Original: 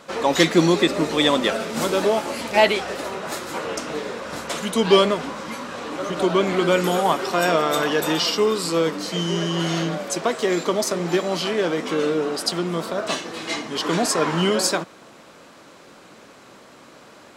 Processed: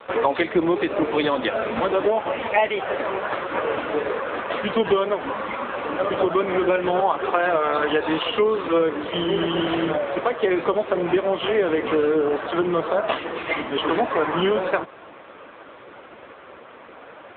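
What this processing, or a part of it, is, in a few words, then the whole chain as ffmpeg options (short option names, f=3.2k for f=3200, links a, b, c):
voicemail: -filter_complex "[0:a]asplit=3[a][b][c];[a]afade=t=out:st=7.28:d=0.02[d];[b]lowpass=9.8k,afade=t=in:st=7.28:d=0.02,afade=t=out:st=9.13:d=0.02[e];[c]afade=t=in:st=9.13:d=0.02[f];[d][e][f]amix=inputs=3:normalize=0,highpass=330,lowpass=2.9k,acompressor=threshold=-24dB:ratio=8,volume=9dB" -ar 8000 -c:a libopencore_amrnb -b:a 5900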